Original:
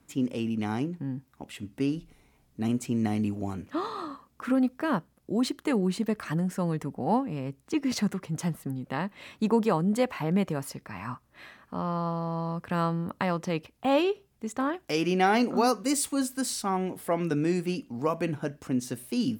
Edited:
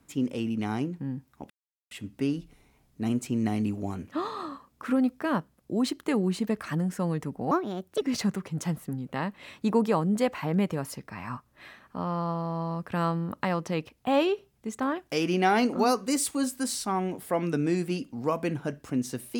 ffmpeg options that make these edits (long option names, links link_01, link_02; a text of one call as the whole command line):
ffmpeg -i in.wav -filter_complex "[0:a]asplit=4[link_01][link_02][link_03][link_04];[link_01]atrim=end=1.5,asetpts=PTS-STARTPTS,afade=type=out:start_time=1.496:duration=0.004:curve=hsin,apad=pad_dur=0.41[link_05];[link_02]atrim=start=1.5:end=7.104,asetpts=PTS-STARTPTS,afade=type=in:duration=0.004:curve=hsin[link_06];[link_03]atrim=start=7.1:end=7.79,asetpts=PTS-STARTPTS,asetrate=60417,aresample=44100[link_07];[link_04]atrim=start=7.786[link_08];[link_05][link_06]concat=n=2:v=0:a=1[link_09];[link_09][link_07]acrossfade=duration=0.004:curve1=hsin:curve2=hsin[link_10];[link_10][link_08]acrossfade=duration=0.004:curve1=hsin:curve2=hsin" out.wav